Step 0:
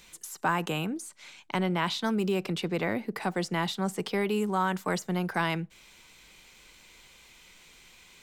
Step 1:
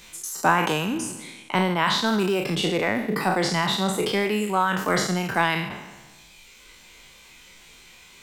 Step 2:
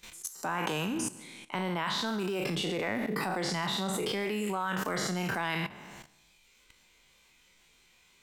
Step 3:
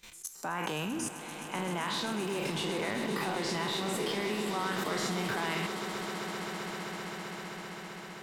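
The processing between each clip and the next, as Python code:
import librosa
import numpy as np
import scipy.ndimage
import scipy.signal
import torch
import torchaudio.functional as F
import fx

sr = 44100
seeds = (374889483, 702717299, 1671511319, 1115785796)

y1 = fx.spec_trails(x, sr, decay_s=1.61)
y1 = fx.dereverb_blind(y1, sr, rt60_s=0.94)
y1 = F.gain(torch.from_numpy(y1), 5.5).numpy()
y2 = fx.level_steps(y1, sr, step_db=16)
y3 = fx.echo_swell(y2, sr, ms=130, loudest=8, wet_db=-13.5)
y3 = F.gain(torch.from_numpy(y3), -2.5).numpy()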